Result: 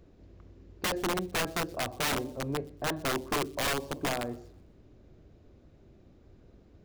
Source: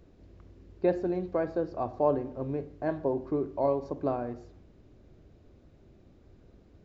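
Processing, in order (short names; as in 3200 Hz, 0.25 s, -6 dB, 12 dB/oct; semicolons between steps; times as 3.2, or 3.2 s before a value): wrapped overs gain 24 dB; on a send: thin delay 0.123 s, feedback 41%, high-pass 3500 Hz, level -22 dB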